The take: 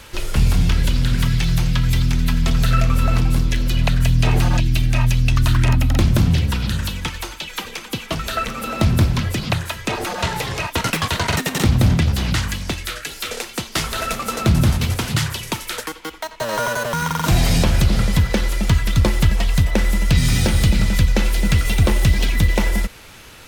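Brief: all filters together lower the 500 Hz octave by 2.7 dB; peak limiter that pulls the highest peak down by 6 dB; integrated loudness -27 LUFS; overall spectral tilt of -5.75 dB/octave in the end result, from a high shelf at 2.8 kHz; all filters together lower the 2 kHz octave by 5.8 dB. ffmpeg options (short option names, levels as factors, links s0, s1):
-af "equalizer=f=500:t=o:g=-3,equalizer=f=2000:t=o:g=-5,highshelf=f=2800:g=-5.5,volume=0.596,alimiter=limit=0.158:level=0:latency=1"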